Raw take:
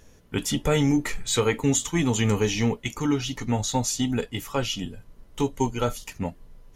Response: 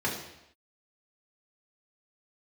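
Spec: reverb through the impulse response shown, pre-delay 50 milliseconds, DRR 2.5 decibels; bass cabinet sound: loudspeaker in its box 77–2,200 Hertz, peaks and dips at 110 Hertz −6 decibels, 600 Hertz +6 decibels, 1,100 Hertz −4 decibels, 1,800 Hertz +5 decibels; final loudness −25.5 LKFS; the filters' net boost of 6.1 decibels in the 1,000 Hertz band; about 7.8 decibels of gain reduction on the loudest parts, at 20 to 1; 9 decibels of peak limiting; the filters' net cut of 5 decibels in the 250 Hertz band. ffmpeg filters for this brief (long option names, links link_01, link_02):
-filter_complex "[0:a]equalizer=frequency=250:width_type=o:gain=-6.5,equalizer=frequency=1000:width_type=o:gain=8.5,acompressor=threshold=-24dB:ratio=20,alimiter=limit=-22.5dB:level=0:latency=1,asplit=2[link_01][link_02];[1:a]atrim=start_sample=2205,adelay=50[link_03];[link_02][link_03]afir=irnorm=-1:irlink=0,volume=-12dB[link_04];[link_01][link_04]amix=inputs=2:normalize=0,highpass=frequency=77:width=0.5412,highpass=frequency=77:width=1.3066,equalizer=frequency=110:width_type=q:width=4:gain=-6,equalizer=frequency=600:width_type=q:width=4:gain=6,equalizer=frequency=1100:width_type=q:width=4:gain=-4,equalizer=frequency=1800:width_type=q:width=4:gain=5,lowpass=frequency=2200:width=0.5412,lowpass=frequency=2200:width=1.3066,volume=7dB"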